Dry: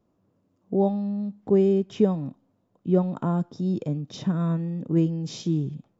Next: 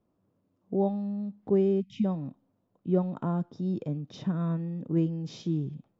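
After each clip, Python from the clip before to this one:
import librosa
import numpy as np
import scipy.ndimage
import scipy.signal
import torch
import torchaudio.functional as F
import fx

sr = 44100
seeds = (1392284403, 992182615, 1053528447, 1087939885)

y = scipy.signal.sosfilt(scipy.signal.bessel(2, 4200.0, 'lowpass', norm='mag', fs=sr, output='sos'), x)
y = fx.spec_erase(y, sr, start_s=1.81, length_s=0.24, low_hz=260.0, high_hz=1900.0)
y = y * librosa.db_to_amplitude(-4.5)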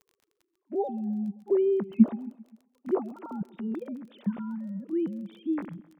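y = fx.sine_speech(x, sr)
y = fx.dmg_crackle(y, sr, seeds[0], per_s=19.0, level_db=-45.0)
y = fx.echo_feedback(y, sr, ms=131, feedback_pct=58, wet_db=-22)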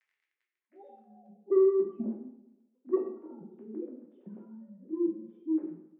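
y = fx.filter_sweep_bandpass(x, sr, from_hz=2000.0, to_hz=370.0, start_s=0.82, end_s=1.45, q=4.9)
y = 10.0 ** (-20.0 / 20.0) * np.tanh(y / 10.0 ** (-20.0 / 20.0))
y = fx.rev_plate(y, sr, seeds[1], rt60_s=0.64, hf_ratio=0.95, predelay_ms=0, drr_db=-1.0)
y = y * librosa.db_to_amplitude(-1.0)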